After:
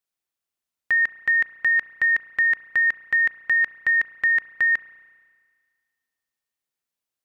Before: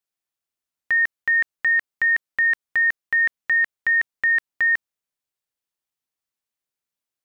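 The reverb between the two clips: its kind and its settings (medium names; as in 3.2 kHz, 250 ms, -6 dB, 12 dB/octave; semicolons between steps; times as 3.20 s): spring tank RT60 1.8 s, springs 33 ms, chirp 35 ms, DRR 15 dB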